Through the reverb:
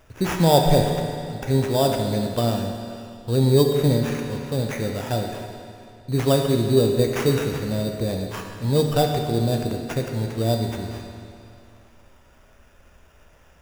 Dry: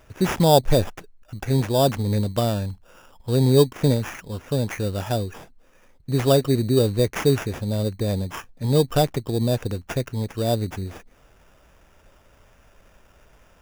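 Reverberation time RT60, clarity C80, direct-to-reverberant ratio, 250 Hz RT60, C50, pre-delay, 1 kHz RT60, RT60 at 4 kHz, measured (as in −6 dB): 2.5 s, 4.5 dB, 2.0 dB, 2.5 s, 3.5 dB, 12 ms, 2.5 s, 2.3 s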